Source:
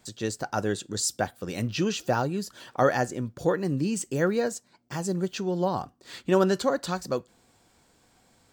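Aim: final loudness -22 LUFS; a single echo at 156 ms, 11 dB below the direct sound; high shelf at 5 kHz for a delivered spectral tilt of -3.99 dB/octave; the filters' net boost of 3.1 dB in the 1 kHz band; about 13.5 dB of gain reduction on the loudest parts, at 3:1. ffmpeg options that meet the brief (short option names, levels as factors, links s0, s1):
-af "equalizer=f=1000:t=o:g=4,highshelf=f=5000:g=6.5,acompressor=threshold=0.02:ratio=3,aecho=1:1:156:0.282,volume=4.73"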